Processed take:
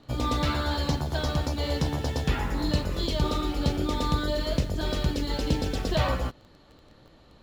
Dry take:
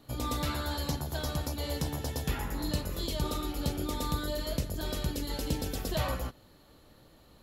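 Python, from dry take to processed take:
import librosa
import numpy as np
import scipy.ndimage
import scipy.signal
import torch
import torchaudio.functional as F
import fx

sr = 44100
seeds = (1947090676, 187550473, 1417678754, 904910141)

p1 = scipy.signal.sosfilt(scipy.signal.butter(2, 5100.0, 'lowpass', fs=sr, output='sos'), x)
p2 = fx.quant_dither(p1, sr, seeds[0], bits=8, dither='none')
p3 = p1 + (p2 * 10.0 ** (-8.0 / 20.0))
y = p3 * 10.0 ** (3.5 / 20.0)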